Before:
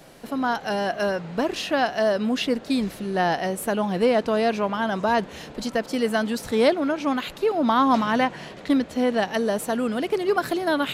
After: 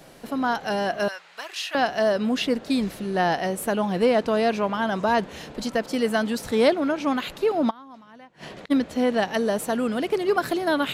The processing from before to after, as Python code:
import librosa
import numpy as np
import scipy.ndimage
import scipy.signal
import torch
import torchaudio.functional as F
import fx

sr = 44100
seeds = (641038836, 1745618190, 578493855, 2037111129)

y = fx.highpass(x, sr, hz=1500.0, slope=12, at=(1.08, 1.75))
y = fx.gate_flip(y, sr, shuts_db=-25.0, range_db=-26, at=(7.69, 8.7), fade=0.02)